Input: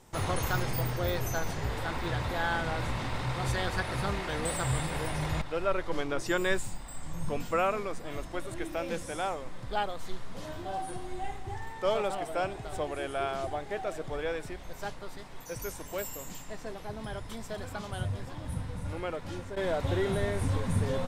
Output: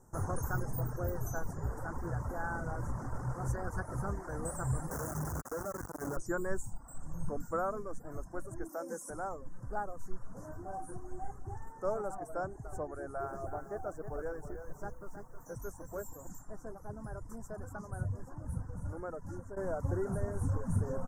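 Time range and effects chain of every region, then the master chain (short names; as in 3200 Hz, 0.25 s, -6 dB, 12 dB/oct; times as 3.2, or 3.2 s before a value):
4.91–6.17 infinite clipping + HPF 58 Hz
8.69–9.1 HPF 220 Hz 24 dB/oct + high shelf 4700 Hz +10 dB + notch 2300 Hz, Q 22
12.87–16.27 high shelf 6800 Hz -7 dB + lo-fi delay 0.317 s, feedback 35%, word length 9-bit, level -7.5 dB
whole clip: reverb removal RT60 0.6 s; elliptic band-stop 1500–6200 Hz, stop band 60 dB; low shelf 220 Hz +4.5 dB; gain -5.5 dB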